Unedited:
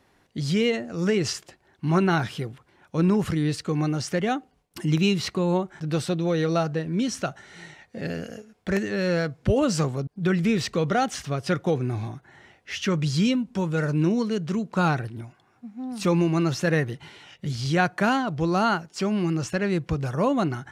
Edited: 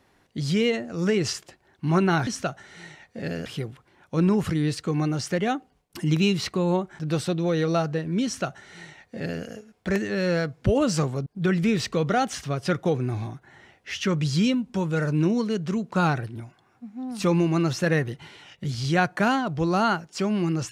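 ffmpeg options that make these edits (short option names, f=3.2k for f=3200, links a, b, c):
-filter_complex "[0:a]asplit=3[a][b][c];[a]atrim=end=2.272[d];[b]atrim=start=7.058:end=8.252[e];[c]atrim=start=2.268[f];[d][e]acrossfade=d=0.004:c1=hsin:c2=hsin[g];[g][f]acrossfade=d=0.004:c1=hsin:c2=hsin"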